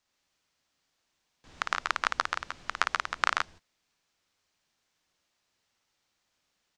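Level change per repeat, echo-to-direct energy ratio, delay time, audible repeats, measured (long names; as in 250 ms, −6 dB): repeats not evenly spaced, −1.0 dB, 55 ms, 2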